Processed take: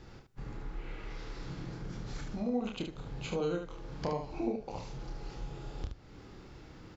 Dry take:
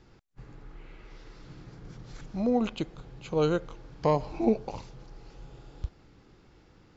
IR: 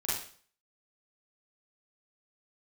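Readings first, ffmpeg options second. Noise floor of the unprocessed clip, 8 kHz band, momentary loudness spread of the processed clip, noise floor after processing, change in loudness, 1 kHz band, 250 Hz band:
−59 dBFS, can't be measured, 17 LU, −54 dBFS, −9.5 dB, −8.0 dB, −6.5 dB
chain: -filter_complex "[0:a]acompressor=threshold=-43dB:ratio=3,aecho=1:1:29|73:0.596|0.501,asplit=2[link_01][link_02];[1:a]atrim=start_sample=2205,adelay=77[link_03];[link_02][link_03]afir=irnorm=-1:irlink=0,volume=-29.5dB[link_04];[link_01][link_04]amix=inputs=2:normalize=0,volume=4.5dB"

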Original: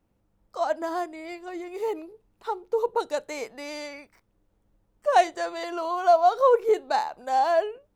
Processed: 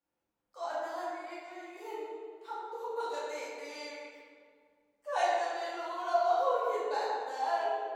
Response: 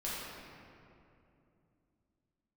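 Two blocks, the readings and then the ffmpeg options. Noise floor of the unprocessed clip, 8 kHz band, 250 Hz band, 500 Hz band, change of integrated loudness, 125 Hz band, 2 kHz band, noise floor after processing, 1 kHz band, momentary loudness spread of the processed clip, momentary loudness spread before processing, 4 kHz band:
−71 dBFS, −7.0 dB, −12.0 dB, −10.0 dB, −9.0 dB, can't be measured, −5.5 dB, −85 dBFS, −8.0 dB, 15 LU, 17 LU, −6.0 dB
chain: -filter_complex "[0:a]highpass=frequency=870:poles=1[link_01];[1:a]atrim=start_sample=2205,asetrate=66150,aresample=44100[link_02];[link_01][link_02]afir=irnorm=-1:irlink=0,volume=-5.5dB"

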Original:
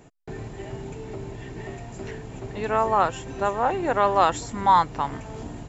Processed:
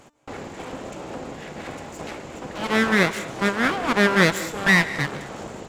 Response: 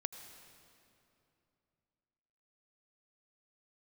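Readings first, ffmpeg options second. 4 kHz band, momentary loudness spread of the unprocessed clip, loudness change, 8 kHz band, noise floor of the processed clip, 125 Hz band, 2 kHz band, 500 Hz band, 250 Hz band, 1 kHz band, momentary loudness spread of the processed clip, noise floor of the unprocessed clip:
+10.0 dB, 17 LU, +2.5 dB, can't be measured, −42 dBFS, +4.5 dB, +14.0 dB, +0.5 dB, +9.0 dB, −6.0 dB, 18 LU, −42 dBFS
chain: -filter_complex "[0:a]aeval=exprs='abs(val(0))':channel_layout=same,highpass=frequency=130:poles=1,bandreject=frequency=297.4:width_type=h:width=4,bandreject=frequency=594.8:width_type=h:width=4,bandreject=frequency=892.2:width_type=h:width=4,bandreject=frequency=1189.6:width_type=h:width=4,bandreject=frequency=1487:width_type=h:width=4,bandreject=frequency=1784.4:width_type=h:width=4,bandreject=frequency=2081.8:width_type=h:width=4,bandreject=frequency=2379.2:width_type=h:width=4,bandreject=frequency=2676.6:width_type=h:width=4,bandreject=frequency=2974:width_type=h:width=4,bandreject=frequency=3271.4:width_type=h:width=4,bandreject=frequency=3568.8:width_type=h:width=4,bandreject=frequency=3866.2:width_type=h:width=4,bandreject=frequency=4163.6:width_type=h:width=4,bandreject=frequency=4461:width_type=h:width=4,bandreject=frequency=4758.4:width_type=h:width=4,bandreject=frequency=5055.8:width_type=h:width=4,bandreject=frequency=5353.2:width_type=h:width=4,bandreject=frequency=5650.6:width_type=h:width=4,bandreject=frequency=5948:width_type=h:width=4,bandreject=frequency=6245.4:width_type=h:width=4,bandreject=frequency=6542.8:width_type=h:width=4,bandreject=frequency=6840.2:width_type=h:width=4,bandreject=frequency=7137.6:width_type=h:width=4,bandreject=frequency=7435:width_type=h:width=4,bandreject=frequency=7732.4:width_type=h:width=4,bandreject=frequency=8029.8:width_type=h:width=4,bandreject=frequency=8327.2:width_type=h:width=4,bandreject=frequency=8624.6:width_type=h:width=4,asplit=2[link_01][link_02];[1:a]atrim=start_sample=2205,afade=type=out:start_time=0.19:duration=0.01,atrim=end_sample=8820,asetrate=26460,aresample=44100[link_03];[link_02][link_03]afir=irnorm=-1:irlink=0,volume=8.5dB[link_04];[link_01][link_04]amix=inputs=2:normalize=0,volume=-6dB"

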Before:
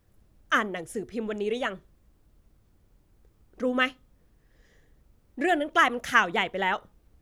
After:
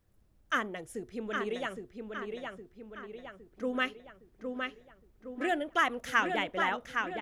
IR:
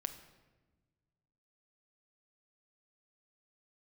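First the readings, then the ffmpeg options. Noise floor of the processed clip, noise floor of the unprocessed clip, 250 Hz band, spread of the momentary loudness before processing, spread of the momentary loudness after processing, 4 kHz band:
−66 dBFS, −65 dBFS, −5.0 dB, 11 LU, 18 LU, −5.5 dB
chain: -filter_complex "[0:a]asplit=2[link_01][link_02];[link_02]adelay=813,lowpass=frequency=4600:poles=1,volume=-4.5dB,asplit=2[link_03][link_04];[link_04]adelay=813,lowpass=frequency=4600:poles=1,volume=0.52,asplit=2[link_05][link_06];[link_06]adelay=813,lowpass=frequency=4600:poles=1,volume=0.52,asplit=2[link_07][link_08];[link_08]adelay=813,lowpass=frequency=4600:poles=1,volume=0.52,asplit=2[link_09][link_10];[link_10]adelay=813,lowpass=frequency=4600:poles=1,volume=0.52,asplit=2[link_11][link_12];[link_12]adelay=813,lowpass=frequency=4600:poles=1,volume=0.52,asplit=2[link_13][link_14];[link_14]adelay=813,lowpass=frequency=4600:poles=1,volume=0.52[link_15];[link_01][link_03][link_05][link_07][link_09][link_11][link_13][link_15]amix=inputs=8:normalize=0,volume=-6.5dB"

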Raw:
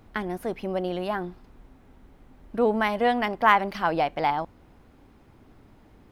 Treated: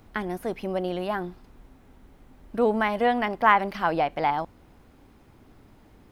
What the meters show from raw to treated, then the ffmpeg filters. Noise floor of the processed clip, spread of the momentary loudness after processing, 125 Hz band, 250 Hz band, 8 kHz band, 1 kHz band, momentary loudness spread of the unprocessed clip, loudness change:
−55 dBFS, 12 LU, 0.0 dB, 0.0 dB, can't be measured, 0.0 dB, 12 LU, 0.0 dB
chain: -filter_complex "[0:a]highshelf=frequency=4600:gain=5,acrossover=split=3000[link_01][link_02];[link_02]acompressor=threshold=-45dB:ratio=4:attack=1:release=60[link_03];[link_01][link_03]amix=inputs=2:normalize=0"

